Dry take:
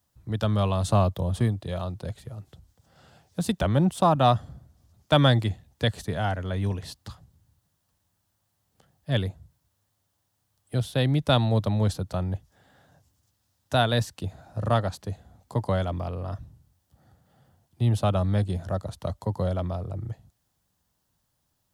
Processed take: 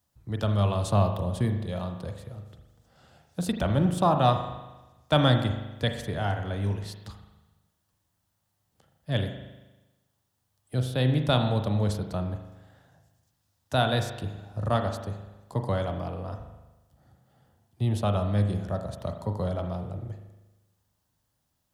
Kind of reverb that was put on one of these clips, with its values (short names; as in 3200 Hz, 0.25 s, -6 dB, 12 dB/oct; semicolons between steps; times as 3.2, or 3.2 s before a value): spring tank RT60 1.1 s, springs 39 ms, chirp 65 ms, DRR 5.5 dB; gain -2.5 dB